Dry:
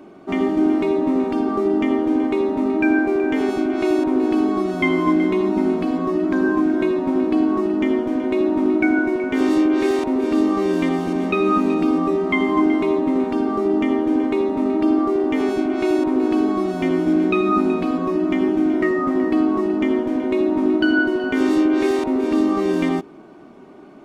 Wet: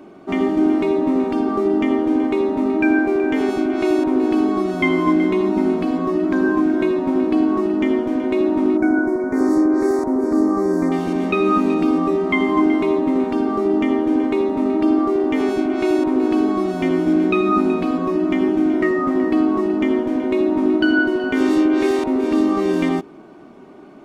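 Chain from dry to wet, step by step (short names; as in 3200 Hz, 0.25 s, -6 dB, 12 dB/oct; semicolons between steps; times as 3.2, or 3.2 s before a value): 8.77–10.92 Butterworth band-stop 3000 Hz, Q 0.76; gain +1 dB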